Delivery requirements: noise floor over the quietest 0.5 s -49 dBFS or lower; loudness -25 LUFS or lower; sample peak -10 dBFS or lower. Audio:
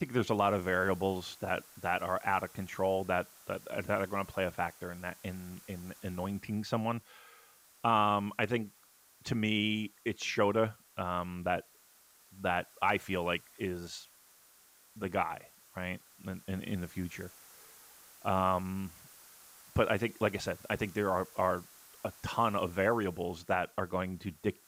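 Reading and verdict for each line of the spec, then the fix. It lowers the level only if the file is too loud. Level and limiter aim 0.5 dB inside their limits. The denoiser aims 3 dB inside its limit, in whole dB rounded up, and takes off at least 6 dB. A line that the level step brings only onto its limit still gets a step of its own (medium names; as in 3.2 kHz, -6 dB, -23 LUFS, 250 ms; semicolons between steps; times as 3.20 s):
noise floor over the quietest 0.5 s -63 dBFS: pass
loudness -34.0 LUFS: pass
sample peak -15.5 dBFS: pass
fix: none needed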